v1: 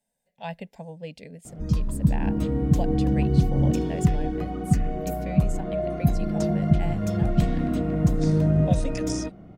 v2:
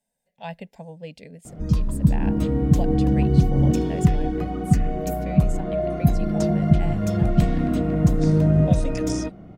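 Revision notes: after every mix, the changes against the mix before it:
background +3.0 dB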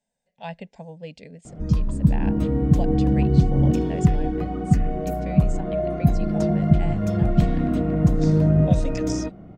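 speech: add Butterworth low-pass 8,100 Hz
background: add high-shelf EQ 3,400 Hz −8 dB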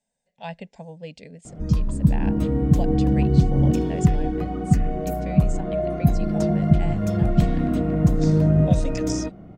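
master: add high-shelf EQ 6,800 Hz +6 dB

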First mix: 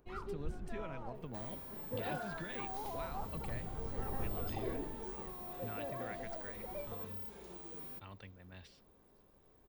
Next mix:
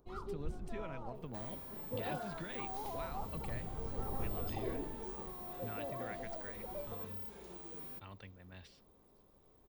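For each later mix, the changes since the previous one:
first sound: add flat-topped bell 2,100 Hz −9 dB 1.1 octaves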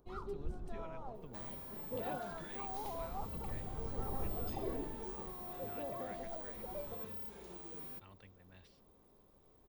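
speech −7.0 dB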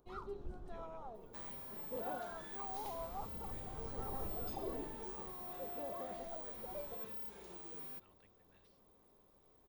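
speech −9.0 dB
master: add low-shelf EQ 340 Hz −5.5 dB

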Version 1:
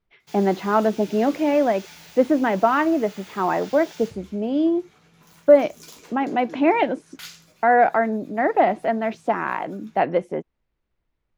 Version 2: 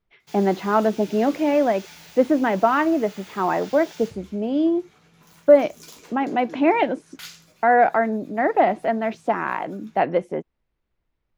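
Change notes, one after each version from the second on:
nothing changed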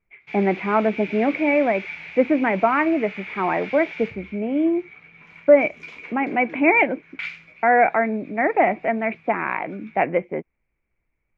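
speech: add low-pass filter 1,100 Hz 6 dB per octave
master: add low-pass with resonance 2,300 Hz, resonance Q 12

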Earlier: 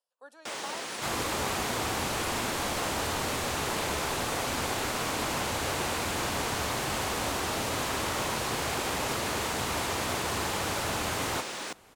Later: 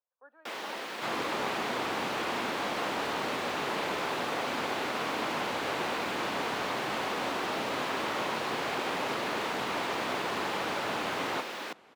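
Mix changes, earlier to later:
speech: add transistor ladder low-pass 2,100 Hz, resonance 30%
first sound: remove Savitzky-Golay smoothing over 9 samples
master: add three-way crossover with the lows and the highs turned down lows −24 dB, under 160 Hz, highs −17 dB, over 4,400 Hz

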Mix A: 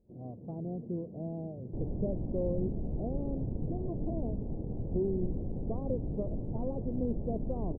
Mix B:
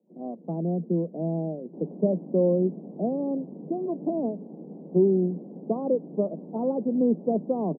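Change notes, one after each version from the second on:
speech +11.5 dB
master: add Butterworth high-pass 160 Hz 96 dB per octave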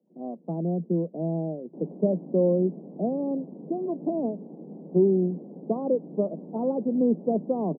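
first sound −8.5 dB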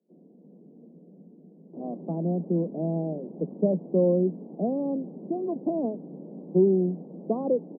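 speech: entry +1.60 s
first sound +5.5 dB

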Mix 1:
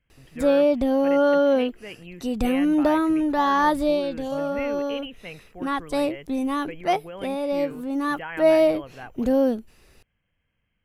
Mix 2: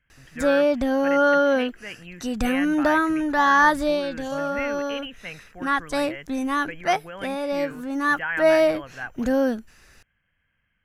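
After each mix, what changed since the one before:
master: add graphic EQ with 15 bands 400 Hz −5 dB, 1,600 Hz +11 dB, 6,300 Hz +8 dB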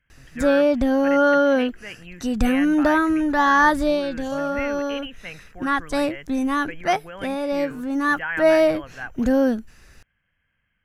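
background: add low-shelf EQ 290 Hz +7 dB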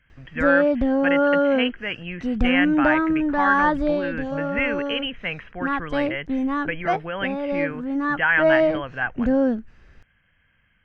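speech +8.5 dB
background: add head-to-tape spacing loss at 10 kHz 29 dB

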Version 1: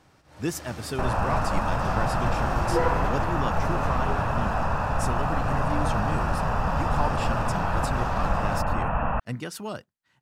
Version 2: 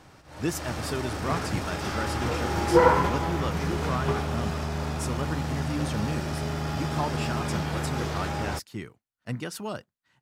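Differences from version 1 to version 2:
first sound +6.5 dB
second sound: muted

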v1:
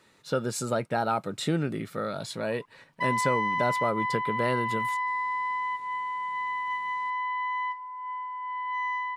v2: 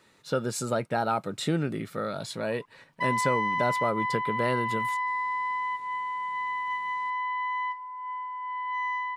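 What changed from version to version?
nothing changed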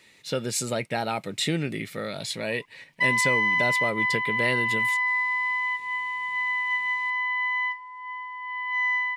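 master: add high shelf with overshoot 1,700 Hz +6 dB, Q 3

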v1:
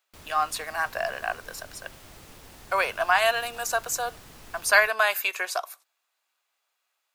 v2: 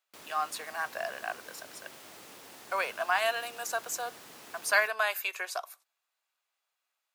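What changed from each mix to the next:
speech −6.5 dB
master: add high-pass filter 270 Hz 12 dB per octave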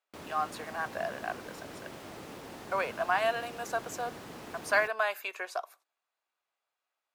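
background +5.5 dB
master: add spectral tilt −3 dB per octave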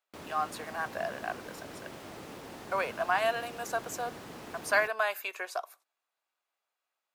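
speech: add high-shelf EQ 8,200 Hz +6 dB

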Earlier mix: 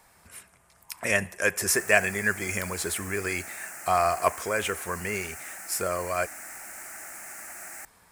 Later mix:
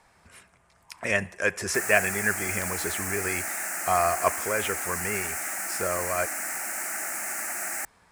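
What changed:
speech: add high-frequency loss of the air 63 metres
background +9.5 dB

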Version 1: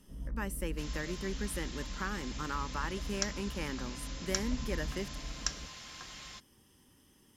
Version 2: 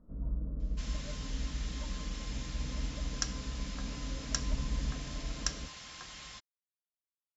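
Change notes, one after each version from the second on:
speech: muted
first sound +4.0 dB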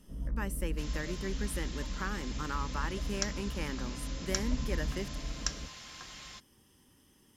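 speech: unmuted

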